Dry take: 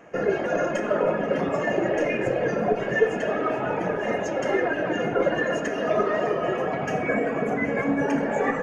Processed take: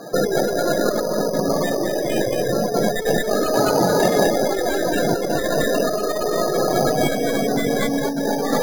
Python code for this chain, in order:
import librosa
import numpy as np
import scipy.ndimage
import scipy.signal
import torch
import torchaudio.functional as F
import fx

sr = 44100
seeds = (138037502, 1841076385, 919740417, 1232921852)

y = fx.tracing_dist(x, sr, depth_ms=0.25)
y = fx.spec_topn(y, sr, count=32)
y = scipy.signal.sosfilt(scipy.signal.butter(2, 2800.0, 'lowpass', fs=sr, output='sos'), y)
y = y + 10.0 ** (-3.5 / 20.0) * np.pad(y, (int(221 * sr / 1000.0), 0))[:len(y)]
y = np.repeat(y[::8], 8)[:len(y)]
y = fx.tube_stage(y, sr, drive_db=11.0, bias=0.35, at=(3.54, 4.27))
y = fx.over_compress(y, sr, threshold_db=-29.0, ratio=-1.0)
y = y * 10.0 ** (9.0 / 20.0)